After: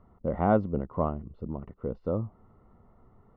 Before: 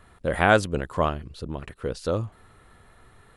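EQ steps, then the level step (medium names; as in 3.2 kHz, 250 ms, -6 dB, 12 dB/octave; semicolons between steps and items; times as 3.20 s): Savitzky-Golay filter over 65 samples; distance through air 240 m; peaking EQ 210 Hz +7 dB 0.55 oct; -4.0 dB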